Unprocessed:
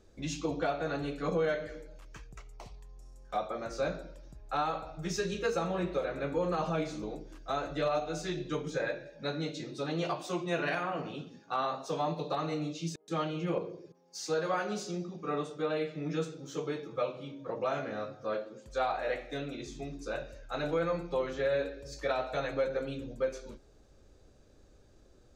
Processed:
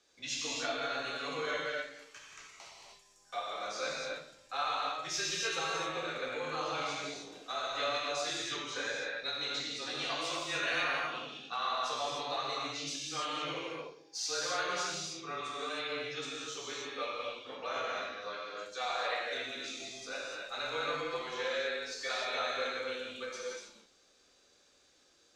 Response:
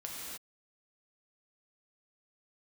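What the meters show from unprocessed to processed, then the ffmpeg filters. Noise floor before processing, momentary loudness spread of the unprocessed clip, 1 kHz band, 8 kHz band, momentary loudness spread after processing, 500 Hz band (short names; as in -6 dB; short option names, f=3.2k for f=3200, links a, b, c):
-60 dBFS, 11 LU, -0.5 dB, +7.0 dB, 9 LU, -6.5 dB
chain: -filter_complex "[0:a]bandpass=f=4.2k:t=q:w=0.7:csg=0,aeval=exprs='0.0473*(cos(1*acos(clip(val(0)/0.0473,-1,1)))-cos(1*PI/2))+0.000473*(cos(4*acos(clip(val(0)/0.0473,-1,1)))-cos(4*PI/2))':c=same,afreqshift=-22[a];[1:a]atrim=start_sample=2205[b];[a][b]afir=irnorm=-1:irlink=0,volume=8.5dB"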